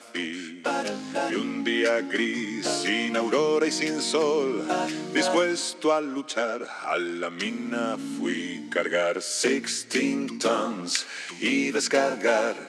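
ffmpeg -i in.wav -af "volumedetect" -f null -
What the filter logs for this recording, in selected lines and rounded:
mean_volume: -26.3 dB
max_volume: -7.9 dB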